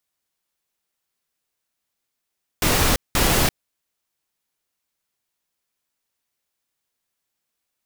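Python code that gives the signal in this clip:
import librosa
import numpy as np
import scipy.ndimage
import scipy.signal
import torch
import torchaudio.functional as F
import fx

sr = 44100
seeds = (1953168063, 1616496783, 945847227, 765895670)

y = fx.noise_burst(sr, seeds[0], colour='pink', on_s=0.34, off_s=0.19, bursts=2, level_db=-18.0)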